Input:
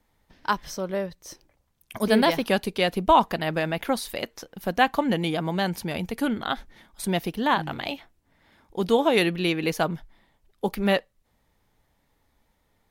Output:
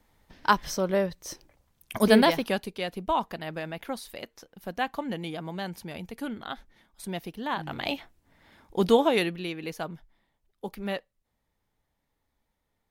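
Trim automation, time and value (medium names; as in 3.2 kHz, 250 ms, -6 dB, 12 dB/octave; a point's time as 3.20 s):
2.06 s +3 dB
2.76 s -9 dB
7.50 s -9 dB
7.93 s +2 dB
8.88 s +2 dB
9.48 s -10 dB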